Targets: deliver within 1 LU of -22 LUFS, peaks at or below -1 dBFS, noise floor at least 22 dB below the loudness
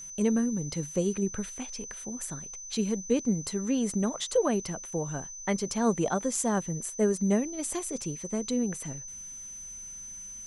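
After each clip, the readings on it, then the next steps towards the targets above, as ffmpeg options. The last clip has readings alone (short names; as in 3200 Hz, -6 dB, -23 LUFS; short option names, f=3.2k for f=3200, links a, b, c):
steady tone 6100 Hz; tone level -40 dBFS; loudness -30.5 LUFS; peak -13.5 dBFS; loudness target -22.0 LUFS
-> -af "bandreject=f=6.1k:w=30"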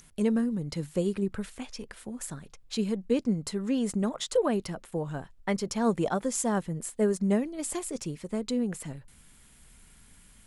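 steady tone none; loudness -30.5 LUFS; peak -14.0 dBFS; loudness target -22.0 LUFS
-> -af "volume=8.5dB"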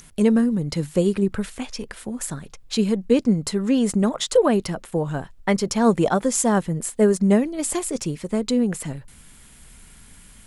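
loudness -22.0 LUFS; peak -5.5 dBFS; noise floor -48 dBFS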